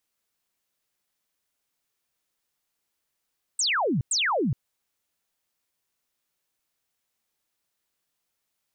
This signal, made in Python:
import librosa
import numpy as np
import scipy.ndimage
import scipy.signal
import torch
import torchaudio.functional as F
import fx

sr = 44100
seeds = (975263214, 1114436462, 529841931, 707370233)

y = fx.laser_zaps(sr, level_db=-21.5, start_hz=8600.0, end_hz=110.0, length_s=0.42, wave='sine', shots=2, gap_s=0.1)